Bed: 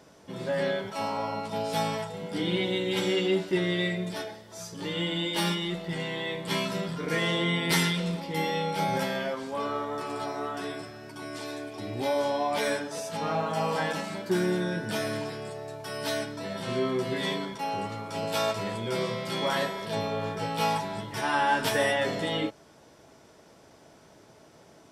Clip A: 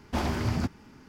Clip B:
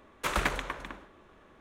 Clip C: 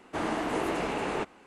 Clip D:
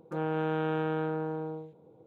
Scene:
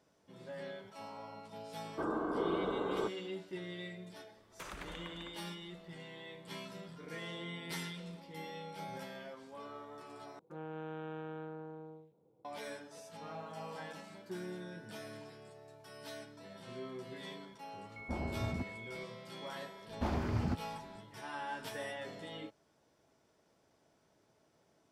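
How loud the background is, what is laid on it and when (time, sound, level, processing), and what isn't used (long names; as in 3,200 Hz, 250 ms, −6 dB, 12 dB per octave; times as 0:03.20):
bed −17 dB
0:01.84: mix in C −1 dB + Chebyshev low-pass with heavy ripple 1,600 Hz, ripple 9 dB
0:04.36: mix in B −11 dB + downward compressor 10 to 1, threshold −31 dBFS
0:10.39: overwrite with D −13.5 dB
0:17.96: mix in A −10 dB + switching amplifier with a slow clock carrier 2,200 Hz
0:19.88: mix in A −6 dB + high-shelf EQ 2,700 Hz −10 dB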